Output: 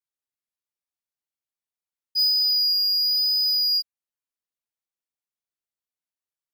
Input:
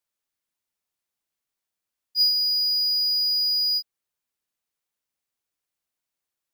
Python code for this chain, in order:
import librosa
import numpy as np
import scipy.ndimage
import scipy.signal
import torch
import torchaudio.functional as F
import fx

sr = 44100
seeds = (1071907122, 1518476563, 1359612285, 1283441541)

y = fx.peak_eq(x, sr, hz=7800.0, db=-8.5, octaves=0.83, at=(2.73, 3.72))
y = fx.leveller(y, sr, passes=3)
y = fx.vibrato(y, sr, rate_hz=0.97, depth_cents=22.0)
y = y * 10.0 ** (-4.5 / 20.0)